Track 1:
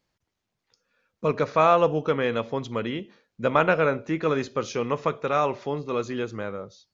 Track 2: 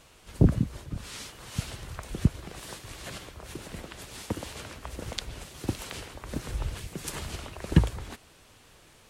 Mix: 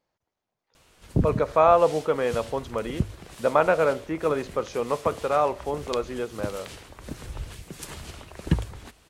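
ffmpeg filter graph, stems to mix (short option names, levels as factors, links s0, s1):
-filter_complex "[0:a]equalizer=f=690:w=0.71:g=10,volume=0.447[s0];[1:a]bandreject=f=51.01:t=h:w=4,bandreject=f=102.02:t=h:w=4,adelay=750,volume=0.75[s1];[s0][s1]amix=inputs=2:normalize=0"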